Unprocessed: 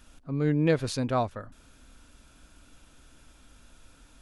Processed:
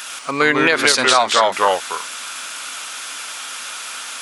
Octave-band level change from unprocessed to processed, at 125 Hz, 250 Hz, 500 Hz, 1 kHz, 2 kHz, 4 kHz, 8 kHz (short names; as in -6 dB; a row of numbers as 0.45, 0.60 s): -7.0, +4.0, +11.5, +19.0, +24.0, +25.0, +24.0 dB